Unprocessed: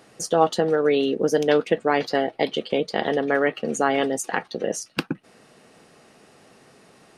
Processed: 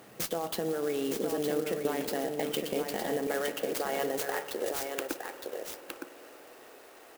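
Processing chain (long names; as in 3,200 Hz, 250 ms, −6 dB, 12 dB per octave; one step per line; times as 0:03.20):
high-pass filter 52 Hz 24 dB per octave, from 0:03.27 360 Hz
brickwall limiter −17 dBFS, peak gain reduction 12.5 dB
downward compressor, threshold −29 dBFS, peak gain reduction 8 dB
single-tap delay 913 ms −5.5 dB
convolution reverb RT60 4.5 s, pre-delay 47 ms, DRR 10 dB
converter with an unsteady clock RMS 0.045 ms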